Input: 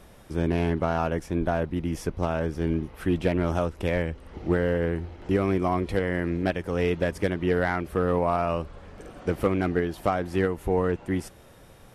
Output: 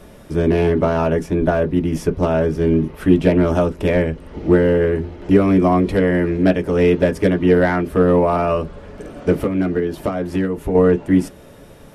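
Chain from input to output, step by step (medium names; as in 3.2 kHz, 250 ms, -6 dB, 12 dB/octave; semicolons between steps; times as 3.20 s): 9.39–10.75 s: compression 6:1, threshold -26 dBFS, peak gain reduction 8.5 dB; on a send: reverberation RT60 0.15 s, pre-delay 3 ms, DRR 3 dB; on the sum: trim +5.5 dB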